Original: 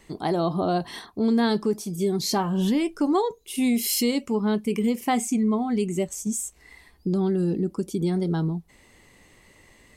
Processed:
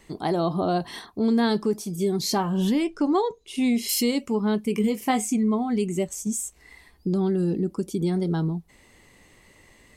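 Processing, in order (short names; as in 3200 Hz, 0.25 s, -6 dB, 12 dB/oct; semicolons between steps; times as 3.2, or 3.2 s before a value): 2.84–3.89 LPF 6400 Hz 12 dB/oct; 4.74–5.33 doubler 19 ms -8 dB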